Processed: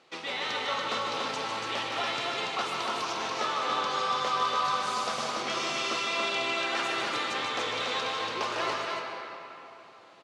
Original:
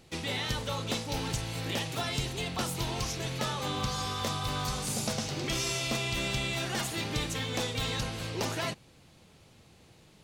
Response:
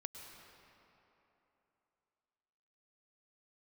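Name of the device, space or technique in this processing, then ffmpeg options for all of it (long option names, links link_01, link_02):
station announcement: -filter_complex "[0:a]highpass=430,lowpass=4500,equalizer=frequency=1200:width_type=o:width=0.56:gain=7,aecho=1:1:151.6|285.7:0.501|0.708[link_01];[1:a]atrim=start_sample=2205[link_02];[link_01][link_02]afir=irnorm=-1:irlink=0,volume=5dB"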